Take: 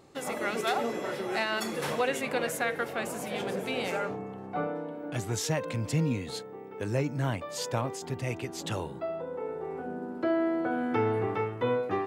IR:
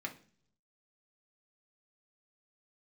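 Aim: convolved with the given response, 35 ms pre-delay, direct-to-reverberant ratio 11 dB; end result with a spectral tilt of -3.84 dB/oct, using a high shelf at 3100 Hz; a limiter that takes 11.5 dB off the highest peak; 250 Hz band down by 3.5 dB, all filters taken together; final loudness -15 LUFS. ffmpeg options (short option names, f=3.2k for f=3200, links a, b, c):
-filter_complex "[0:a]equalizer=f=250:t=o:g=-5,highshelf=f=3.1k:g=8,alimiter=level_in=1dB:limit=-24dB:level=0:latency=1,volume=-1dB,asplit=2[a][b];[1:a]atrim=start_sample=2205,adelay=35[c];[b][c]afir=irnorm=-1:irlink=0,volume=-11.5dB[d];[a][d]amix=inputs=2:normalize=0,volume=20dB"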